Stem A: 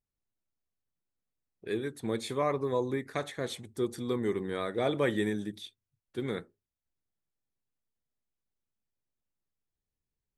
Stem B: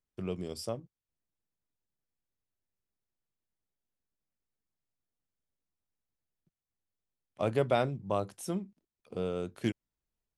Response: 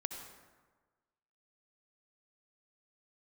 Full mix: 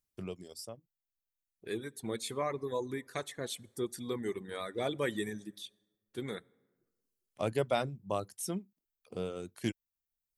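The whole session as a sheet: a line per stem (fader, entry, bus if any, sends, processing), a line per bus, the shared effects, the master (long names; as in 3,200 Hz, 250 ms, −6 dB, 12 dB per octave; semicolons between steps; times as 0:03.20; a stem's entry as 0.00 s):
−6.5 dB, 0.00 s, send −10 dB, no processing
−2.5 dB, 0.00 s, no send, automatic ducking −20 dB, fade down 1.50 s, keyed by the first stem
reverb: on, RT60 1.4 s, pre-delay 58 ms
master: reverb reduction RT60 0.89 s; high-shelf EQ 4,700 Hz +10 dB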